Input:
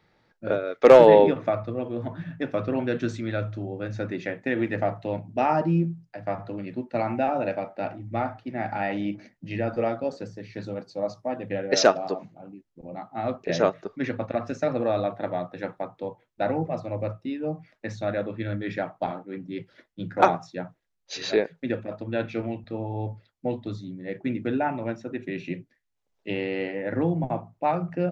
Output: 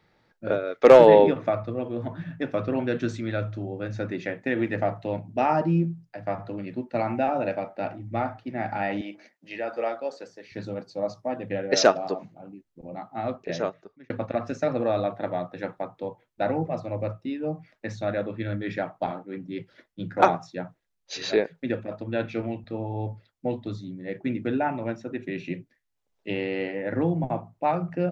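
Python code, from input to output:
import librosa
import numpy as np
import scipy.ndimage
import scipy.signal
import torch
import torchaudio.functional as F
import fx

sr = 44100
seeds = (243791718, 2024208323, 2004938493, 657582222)

y = fx.highpass(x, sr, hz=480.0, slope=12, at=(9.01, 10.52))
y = fx.edit(y, sr, fx.fade_out_span(start_s=13.13, length_s=0.97), tone=tone)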